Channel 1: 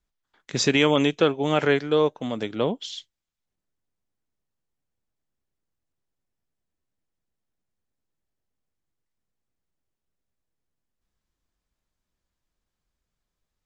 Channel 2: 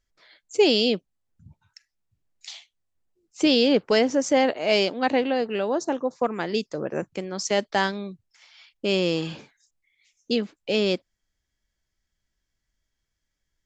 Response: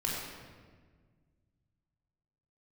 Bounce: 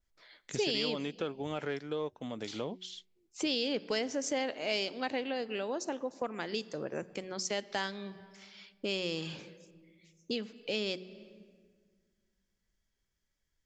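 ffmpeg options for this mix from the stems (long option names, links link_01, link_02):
-filter_complex "[0:a]acontrast=45,volume=-13dB,afade=type=out:start_time=2.82:duration=0.29:silence=0.334965[link_01];[1:a]adynamicequalizer=threshold=0.0158:dfrequency=1700:dqfactor=0.7:tfrequency=1700:tqfactor=0.7:attack=5:release=100:ratio=0.375:range=3:mode=boostabove:tftype=highshelf,volume=-4dB,asplit=2[link_02][link_03];[link_03]volume=-23.5dB[link_04];[2:a]atrim=start_sample=2205[link_05];[link_04][link_05]afir=irnorm=-1:irlink=0[link_06];[link_01][link_02][link_06]amix=inputs=3:normalize=0,bandreject=frequency=184.8:width_type=h:width=4,bandreject=frequency=369.6:width_type=h:width=4,acompressor=threshold=-38dB:ratio=2"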